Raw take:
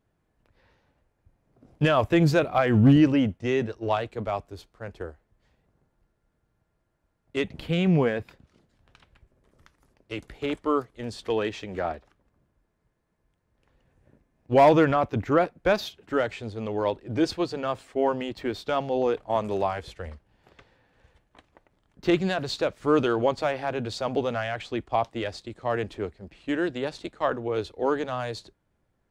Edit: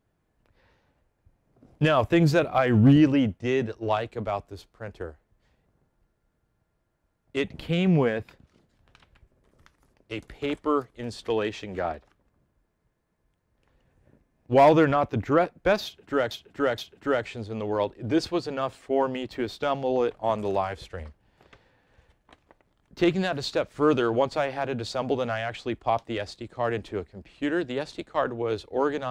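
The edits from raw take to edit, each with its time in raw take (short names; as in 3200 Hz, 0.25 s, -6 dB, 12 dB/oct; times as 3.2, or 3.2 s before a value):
15.84–16.31 loop, 3 plays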